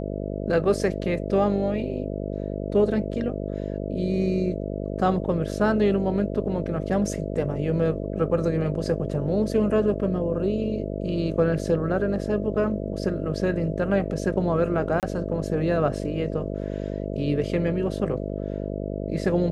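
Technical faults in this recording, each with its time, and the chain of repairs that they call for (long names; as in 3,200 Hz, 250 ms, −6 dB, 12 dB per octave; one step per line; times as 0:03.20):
mains buzz 50 Hz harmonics 13 −30 dBFS
0:15.00–0:15.03: drop-out 28 ms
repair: hum removal 50 Hz, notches 13
repair the gap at 0:15.00, 28 ms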